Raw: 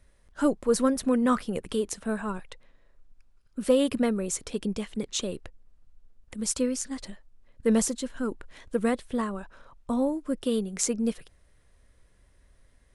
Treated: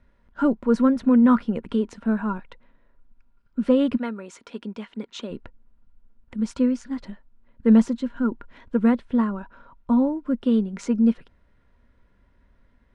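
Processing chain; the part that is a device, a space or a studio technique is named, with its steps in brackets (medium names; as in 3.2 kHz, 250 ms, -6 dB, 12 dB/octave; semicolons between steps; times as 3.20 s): inside a cardboard box (low-pass 2.9 kHz 12 dB/octave; small resonant body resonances 230/960/1400 Hz, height 10 dB); 3.96–5.30 s: high-pass 1.1 kHz -> 470 Hz 6 dB/octave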